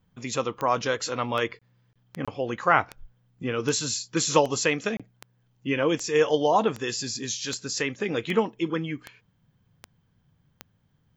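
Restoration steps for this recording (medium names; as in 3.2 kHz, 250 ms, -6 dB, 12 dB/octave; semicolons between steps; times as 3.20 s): de-click; interpolate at 1.59/1.93/2.25/4.97 s, 26 ms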